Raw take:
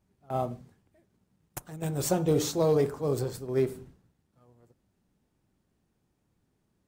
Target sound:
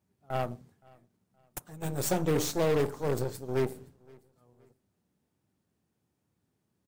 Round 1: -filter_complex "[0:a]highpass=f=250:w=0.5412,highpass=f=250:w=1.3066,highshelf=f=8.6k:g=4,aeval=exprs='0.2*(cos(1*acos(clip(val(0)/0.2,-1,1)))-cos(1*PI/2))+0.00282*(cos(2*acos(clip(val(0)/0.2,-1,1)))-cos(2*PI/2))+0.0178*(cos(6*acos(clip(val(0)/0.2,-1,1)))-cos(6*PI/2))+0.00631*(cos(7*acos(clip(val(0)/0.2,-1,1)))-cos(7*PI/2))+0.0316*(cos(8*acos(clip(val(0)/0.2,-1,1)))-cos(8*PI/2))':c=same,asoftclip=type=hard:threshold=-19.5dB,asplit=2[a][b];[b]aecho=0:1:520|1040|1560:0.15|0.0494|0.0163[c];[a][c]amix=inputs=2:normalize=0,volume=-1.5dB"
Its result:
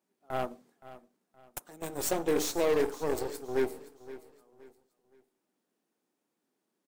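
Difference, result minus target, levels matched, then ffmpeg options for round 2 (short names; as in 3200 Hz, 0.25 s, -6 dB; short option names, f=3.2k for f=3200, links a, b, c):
125 Hz band -12.0 dB; echo-to-direct +10 dB
-filter_complex "[0:a]highpass=f=73:w=0.5412,highpass=f=73:w=1.3066,highshelf=f=8.6k:g=4,aeval=exprs='0.2*(cos(1*acos(clip(val(0)/0.2,-1,1)))-cos(1*PI/2))+0.00282*(cos(2*acos(clip(val(0)/0.2,-1,1)))-cos(2*PI/2))+0.0178*(cos(6*acos(clip(val(0)/0.2,-1,1)))-cos(6*PI/2))+0.00631*(cos(7*acos(clip(val(0)/0.2,-1,1)))-cos(7*PI/2))+0.0316*(cos(8*acos(clip(val(0)/0.2,-1,1)))-cos(8*PI/2))':c=same,asoftclip=type=hard:threshold=-19.5dB,asplit=2[a][b];[b]aecho=0:1:520|1040:0.0473|0.0156[c];[a][c]amix=inputs=2:normalize=0,volume=-1.5dB"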